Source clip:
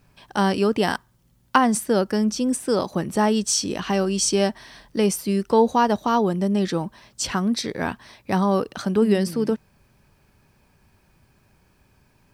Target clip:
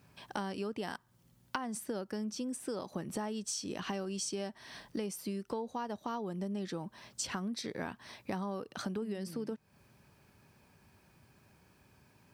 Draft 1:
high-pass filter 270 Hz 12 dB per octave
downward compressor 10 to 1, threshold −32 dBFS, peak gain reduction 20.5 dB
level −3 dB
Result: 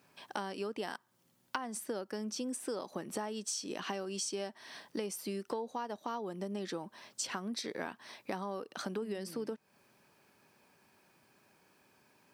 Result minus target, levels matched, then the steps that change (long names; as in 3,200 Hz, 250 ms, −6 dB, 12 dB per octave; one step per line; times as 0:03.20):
125 Hz band −4.5 dB
change: high-pass filter 83 Hz 12 dB per octave